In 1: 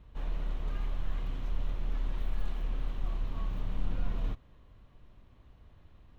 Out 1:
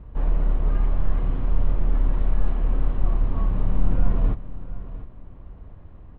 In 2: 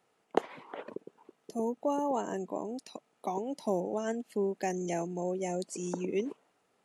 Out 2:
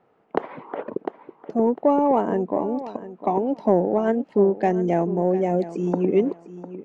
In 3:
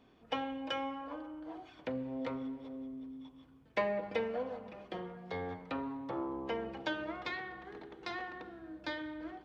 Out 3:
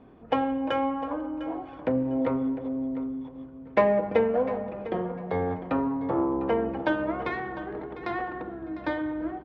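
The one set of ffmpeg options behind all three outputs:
ffmpeg -i in.wav -af "adynamicsmooth=sensitivity=0.5:basefreq=1500,aecho=1:1:702|1404:0.188|0.0414,alimiter=level_in=18dB:limit=-1dB:release=50:level=0:latency=1,volume=-5dB" out.wav

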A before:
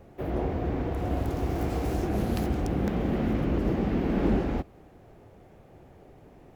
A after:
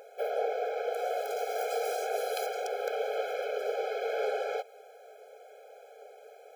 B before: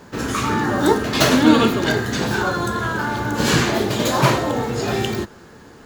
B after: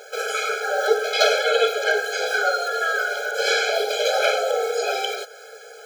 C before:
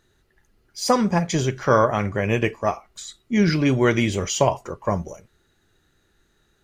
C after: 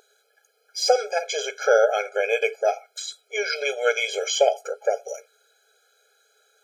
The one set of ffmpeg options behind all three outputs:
ffmpeg -i in.wav -filter_complex "[0:a]acrossover=split=4900[link_01][link_02];[link_02]acompressor=threshold=-41dB:ratio=4:attack=1:release=60[link_03];[link_01][link_03]amix=inputs=2:normalize=0,equalizer=frequency=860:width=0.43:gain=-4.5,asplit=2[link_04][link_05];[link_05]acompressor=threshold=-30dB:ratio=6,volume=0.5dB[link_06];[link_04][link_06]amix=inputs=2:normalize=0,aeval=exprs='val(0)+0.0224*(sin(2*PI*60*n/s)+sin(2*PI*2*60*n/s)/2+sin(2*PI*3*60*n/s)/3+sin(2*PI*4*60*n/s)/4+sin(2*PI*5*60*n/s)/5)':channel_layout=same,afftfilt=real='re*eq(mod(floor(b*sr/1024/430),2),1)':imag='im*eq(mod(floor(b*sr/1024/430),2),1)':win_size=1024:overlap=0.75,volume=4dB" out.wav

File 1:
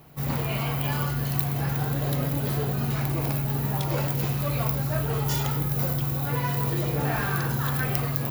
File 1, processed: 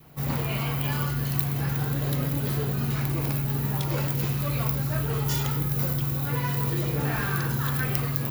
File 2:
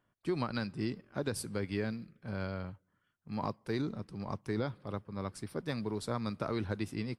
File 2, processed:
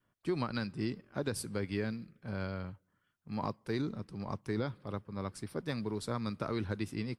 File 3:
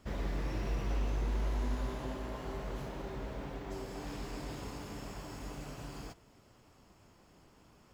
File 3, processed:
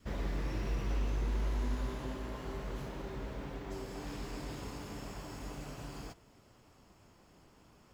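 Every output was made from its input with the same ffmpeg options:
ffmpeg -i in.wav -af "adynamicequalizer=threshold=0.00316:dfrequency=700:dqfactor=1.9:tfrequency=700:tqfactor=1.9:attack=5:release=100:ratio=0.375:range=3:mode=cutabove:tftype=bell" out.wav

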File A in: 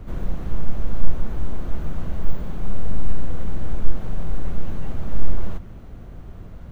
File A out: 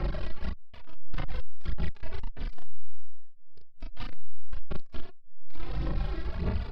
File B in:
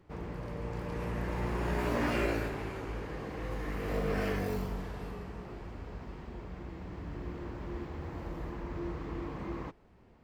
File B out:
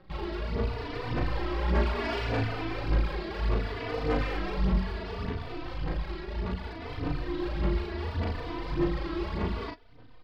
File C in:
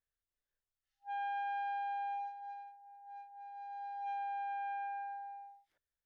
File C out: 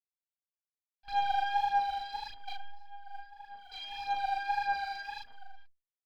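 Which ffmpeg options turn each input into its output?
ffmpeg -i in.wav -filter_complex "[0:a]acrossover=split=1400[link_01][link_02];[link_01]acompressor=threshold=-24dB:ratio=10[link_03];[link_03][link_02]amix=inputs=2:normalize=0,acrusher=bits=8:dc=4:mix=0:aa=0.000001,aresample=11025,volume=34.5dB,asoftclip=hard,volume=-34.5dB,aresample=44100,aphaser=in_gain=1:out_gain=1:delay=3.1:decay=0.66:speed=1.7:type=sinusoidal,asplit=2[link_04][link_05];[link_05]adelay=37,volume=-3dB[link_06];[link_04][link_06]amix=inputs=2:normalize=0,aeval=exprs='0.1*(cos(1*acos(clip(val(0)/0.1,-1,1)))-cos(1*PI/2))+0.00501*(cos(6*acos(clip(val(0)/0.1,-1,1)))-cos(6*PI/2))':channel_layout=same,asplit=2[link_07][link_08];[link_08]adelay=3.3,afreqshift=0.67[link_09];[link_07][link_09]amix=inputs=2:normalize=1,volume=4.5dB" out.wav

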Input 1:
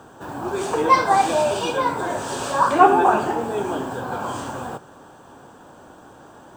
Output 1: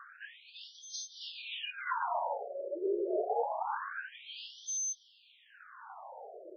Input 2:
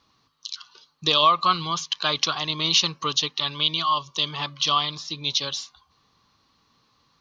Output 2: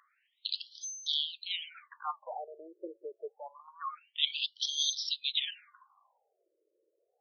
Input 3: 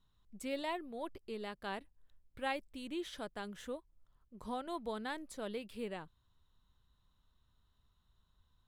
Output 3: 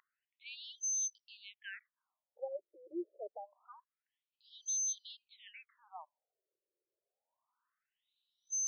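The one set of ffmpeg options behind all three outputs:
ffmpeg -i in.wav -af "aeval=exprs='val(0)+0.0224*sin(2*PI*6200*n/s)':channel_layout=same,agate=range=-7dB:threshold=-21dB:ratio=16:detection=peak,areverse,acompressor=threshold=-33dB:ratio=12,areverse,afftfilt=real='re*between(b*sr/1024,430*pow(4500/430,0.5+0.5*sin(2*PI*0.26*pts/sr))/1.41,430*pow(4500/430,0.5+0.5*sin(2*PI*0.26*pts/sr))*1.41)':imag='im*between(b*sr/1024,430*pow(4500/430,0.5+0.5*sin(2*PI*0.26*pts/sr))/1.41,430*pow(4500/430,0.5+0.5*sin(2*PI*0.26*pts/sr))*1.41)':win_size=1024:overlap=0.75,volume=8.5dB" out.wav

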